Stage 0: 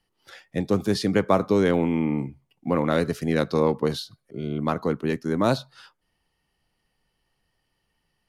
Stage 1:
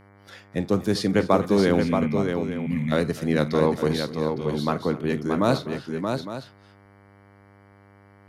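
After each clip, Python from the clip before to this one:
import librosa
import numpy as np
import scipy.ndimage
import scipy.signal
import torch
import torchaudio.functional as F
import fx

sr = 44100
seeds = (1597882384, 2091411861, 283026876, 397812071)

y = fx.spec_box(x, sr, start_s=1.81, length_s=1.11, low_hz=260.0, high_hz=1700.0, gain_db=-24)
y = fx.echo_multitap(y, sr, ms=(46, 251, 627, 859), db=(-16.5, -18.0, -5.5, -12.5))
y = fx.dmg_buzz(y, sr, base_hz=100.0, harmonics=23, level_db=-53.0, tilt_db=-4, odd_only=False)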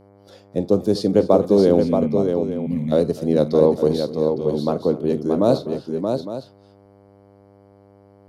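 y = fx.curve_eq(x, sr, hz=(140.0, 550.0, 1900.0, 4400.0, 6400.0), db=(0, 8, -15, 0, -3))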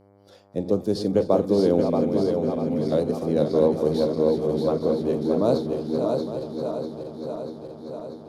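y = fx.reverse_delay_fb(x, sr, ms=320, feedback_pct=82, wet_db=-8)
y = F.gain(torch.from_numpy(y), -5.0).numpy()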